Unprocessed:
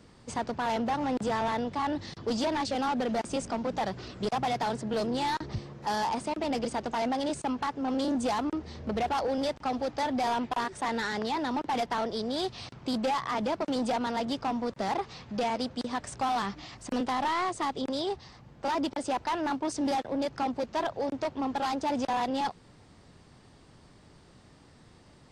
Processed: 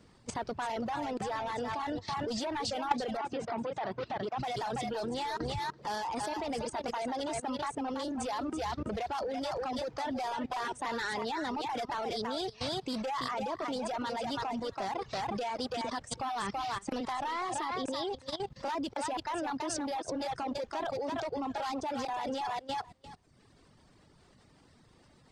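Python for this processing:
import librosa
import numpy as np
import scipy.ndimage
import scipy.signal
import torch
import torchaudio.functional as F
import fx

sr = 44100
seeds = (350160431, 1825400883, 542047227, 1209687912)

p1 = fx.dynamic_eq(x, sr, hz=210.0, q=1.6, threshold_db=-44.0, ratio=4.0, max_db=-5)
p2 = p1 + fx.echo_thinned(p1, sr, ms=332, feedback_pct=19, hz=390.0, wet_db=-5.5, dry=0)
p3 = fx.level_steps(p2, sr, step_db=13)
p4 = fx.dereverb_blind(p3, sr, rt60_s=0.87)
p5 = fx.bandpass_edges(p4, sr, low_hz=110.0, high_hz=3000.0, at=(3.17, 4.38))
y = p5 * librosa.db_to_amplitude(5.5)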